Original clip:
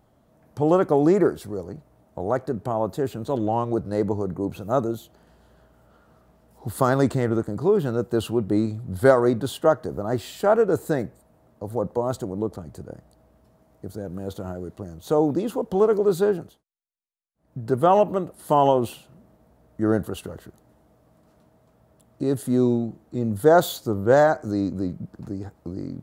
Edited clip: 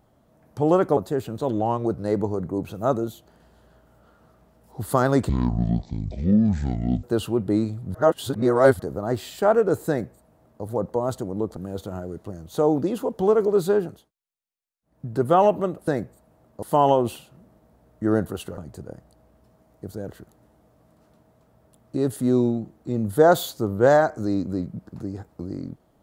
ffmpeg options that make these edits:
-filter_complex "[0:a]asplit=11[a][b][c][d][e][f][g][h][i][j][k];[a]atrim=end=0.972[l];[b]atrim=start=2.838:end=7.164[m];[c]atrim=start=7.16:end=8.05,asetpts=PTS-STARTPTS,asetrate=22491,aresample=44100[n];[d]atrim=start=8.046:end=8.962[o];[e]atrim=start=8.958:end=9.812,asetpts=PTS-STARTPTS,areverse[p];[f]atrim=start=9.808:end=12.582[q];[g]atrim=start=14.088:end=18.402[r];[h]atrim=start=10.898:end=11.652[s];[i]atrim=start=18.398:end=20.352[t];[j]atrim=start=12.578:end=14.092[u];[k]atrim=start=20.348[v];[l][m]acrossfade=d=0.004:c1=hsin:c2=hsin[w];[w][n]acrossfade=d=0.004:c1=hsin:c2=hsin[x];[x][o]acrossfade=d=0.004:c1=hsin:c2=hsin[y];[y][p]acrossfade=d=0.004:c1=hsin:c2=hsin[z];[z][q]acrossfade=d=0.004:c1=hsin:c2=hsin[aa];[aa][r]acrossfade=d=0.004:c1=hsin:c2=hsin[ab];[ab][s]acrossfade=d=0.004:c1=hsin:c2=hsin[ac];[ac][t]acrossfade=d=0.004:c1=hsin:c2=hsin[ad];[ad][u]acrossfade=d=0.004:c1=hsin:c2=hsin[ae];[ae][v]acrossfade=d=0.004:c1=hsin:c2=hsin"

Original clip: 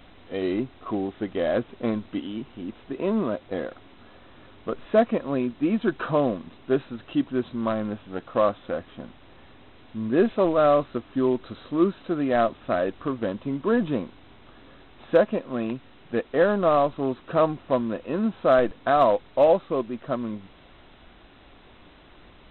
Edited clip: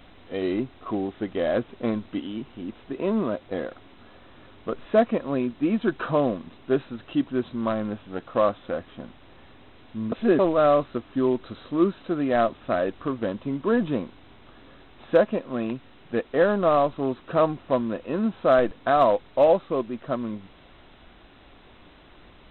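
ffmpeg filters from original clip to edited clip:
-filter_complex "[0:a]asplit=3[a][b][c];[a]atrim=end=10.122[d];[b]atrim=start=10.118:end=10.392,asetpts=PTS-STARTPTS,areverse[e];[c]atrim=start=10.388[f];[d][e]acrossfade=d=0.004:c1=hsin:c2=hsin[g];[g][f]acrossfade=d=0.004:c1=hsin:c2=hsin"

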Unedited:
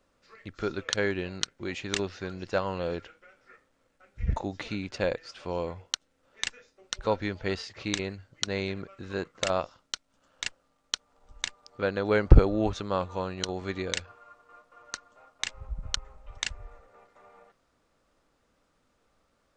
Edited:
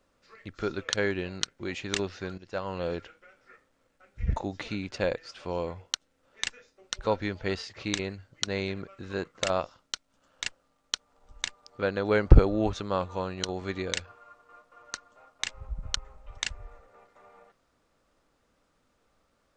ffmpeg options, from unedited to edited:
-filter_complex "[0:a]asplit=2[a][b];[a]atrim=end=2.38,asetpts=PTS-STARTPTS,afade=t=out:st=2.376:d=0.004:c=hsin:silence=0.177828[c];[b]atrim=start=2.38,asetpts=PTS-STARTPTS,afade=t=in:d=0.46:silence=0.177828[d];[c][d]concat=n=2:v=0:a=1"

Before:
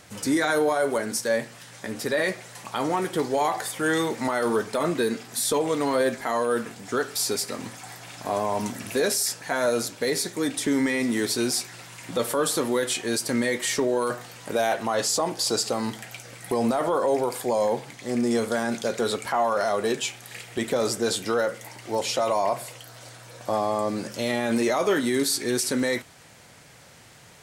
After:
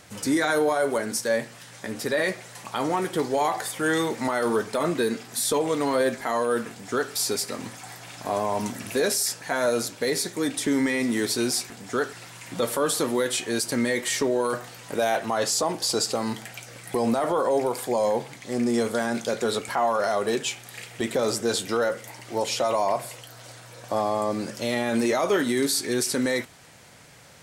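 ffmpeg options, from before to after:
-filter_complex "[0:a]asplit=3[a][b][c];[a]atrim=end=11.702[d];[b]atrim=start=6.688:end=7.122[e];[c]atrim=start=11.698[f];[d][e]acrossfade=d=0.004:c1=hsin:c2=hsin[g];[g][f]acrossfade=d=0.004:c1=hsin:c2=hsin"

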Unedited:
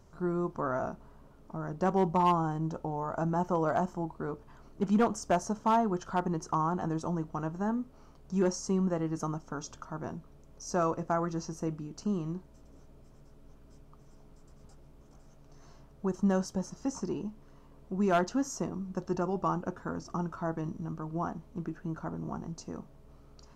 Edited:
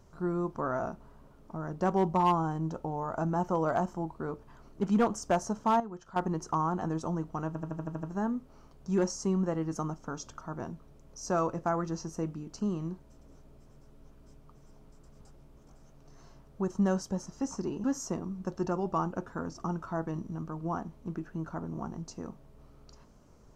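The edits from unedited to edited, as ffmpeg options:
-filter_complex "[0:a]asplit=11[a][b][c][d][e][f][g][h][i][j][k];[a]atrim=end=5.802[l];[b]atrim=start=5.798:end=6.162,asetpts=PTS-STARTPTS,volume=-11dB[m];[c]atrim=start=6.158:end=7.552[n];[d]atrim=start=7.468:end=7.552[o];[e]atrim=start=7.468:end=7.552[p];[f]atrim=start=7.468:end=7.552[q];[g]atrim=start=7.468:end=7.552[r];[h]atrim=start=7.468:end=7.552[s];[i]atrim=start=7.468:end=7.552[t];[j]atrim=start=7.468:end=17.282[u];[k]atrim=start=18.338[v];[l][m]acrossfade=d=0.004:c1=hsin:c2=hsin[w];[w][n]acrossfade=d=0.004:c1=hsin:c2=hsin[x];[x][o]acrossfade=d=0.004:c1=hsin:c2=hsin[y];[y][p]acrossfade=d=0.004:c1=hsin:c2=hsin[z];[z][q]acrossfade=d=0.004:c1=hsin:c2=hsin[aa];[aa][r]acrossfade=d=0.004:c1=hsin:c2=hsin[ab];[ab][s]acrossfade=d=0.004:c1=hsin:c2=hsin[ac];[ac][t]acrossfade=d=0.004:c1=hsin:c2=hsin[ad];[ad][u]acrossfade=d=0.004:c1=hsin:c2=hsin[ae];[ae][v]acrossfade=d=0.004:c1=hsin:c2=hsin"

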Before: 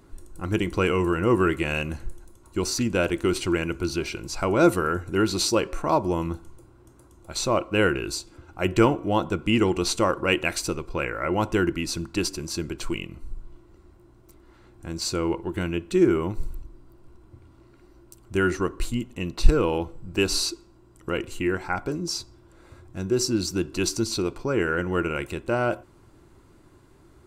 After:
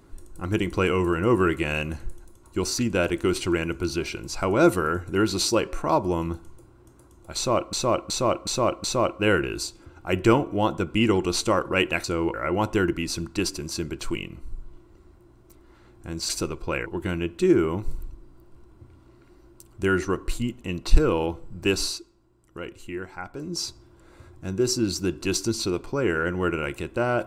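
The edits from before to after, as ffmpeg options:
-filter_complex "[0:a]asplit=11[a][b][c][d][e][f][g][h][i][j][k];[a]atrim=end=7.732[l];[b]atrim=start=7.358:end=7.732[m];[c]atrim=start=7.358:end=7.732[n];[d]atrim=start=7.358:end=7.732[o];[e]atrim=start=7.358:end=10.562[p];[f]atrim=start=15.078:end=15.382[q];[g]atrim=start=11.128:end=15.082[r];[h]atrim=start=10.558:end=11.132[s];[i]atrim=start=15.378:end=20.51,asetpts=PTS-STARTPTS,afade=t=out:st=4.902:d=0.23:silence=0.375837[t];[j]atrim=start=20.51:end=21.88,asetpts=PTS-STARTPTS,volume=-8.5dB[u];[k]atrim=start=21.88,asetpts=PTS-STARTPTS,afade=t=in:d=0.23:silence=0.375837[v];[l][m]acrossfade=d=0.004:c1=hsin:c2=hsin[w];[w][n]acrossfade=d=0.004:c1=hsin:c2=hsin[x];[x][o]acrossfade=d=0.004:c1=hsin:c2=hsin[y];[y][p]acrossfade=d=0.004:c1=hsin:c2=hsin[z];[z][q]acrossfade=d=0.004:c1=hsin:c2=hsin[aa];[aa][r]acrossfade=d=0.004:c1=hsin:c2=hsin[ab];[ab][s]acrossfade=d=0.004:c1=hsin:c2=hsin[ac];[t][u][v]concat=n=3:v=0:a=1[ad];[ac][ad]acrossfade=d=0.004:c1=hsin:c2=hsin"

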